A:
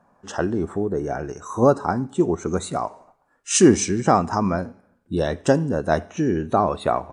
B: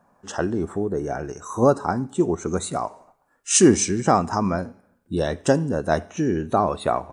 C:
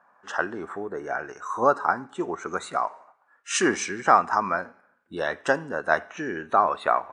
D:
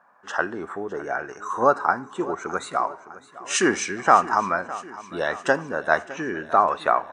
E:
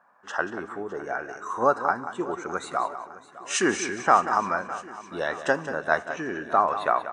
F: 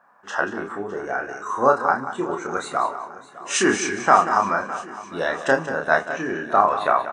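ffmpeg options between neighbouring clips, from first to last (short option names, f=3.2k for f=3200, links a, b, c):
-af "highshelf=f=8.8k:g=9.5,volume=-1dB"
-af "bandpass=f=1.5k:t=q:w=1.5:csg=0,volume=7dB"
-af "aecho=1:1:609|1218|1827|2436|3045:0.133|0.0747|0.0418|0.0234|0.0131,volume=2dB"
-af "aecho=1:1:185|370:0.266|0.0479,volume=-3dB"
-filter_complex "[0:a]asplit=2[a][b];[b]adelay=30,volume=-4dB[c];[a][c]amix=inputs=2:normalize=0,volume=3dB"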